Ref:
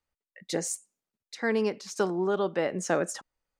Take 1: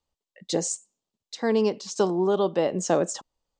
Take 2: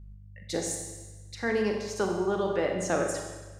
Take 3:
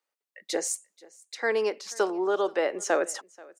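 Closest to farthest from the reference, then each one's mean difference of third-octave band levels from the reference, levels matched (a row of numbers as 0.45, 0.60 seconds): 1, 3, 2; 2.0, 3.5, 8.0 decibels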